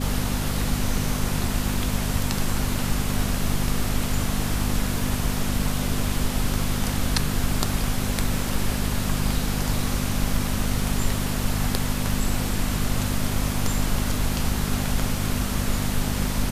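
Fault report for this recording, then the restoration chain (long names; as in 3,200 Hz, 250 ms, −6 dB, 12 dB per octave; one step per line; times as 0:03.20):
mains hum 50 Hz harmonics 5 −28 dBFS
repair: hum removal 50 Hz, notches 5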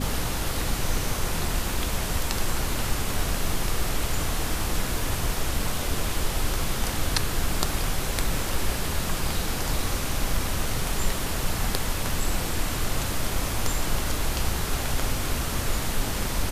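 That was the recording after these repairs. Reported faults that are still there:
none of them is left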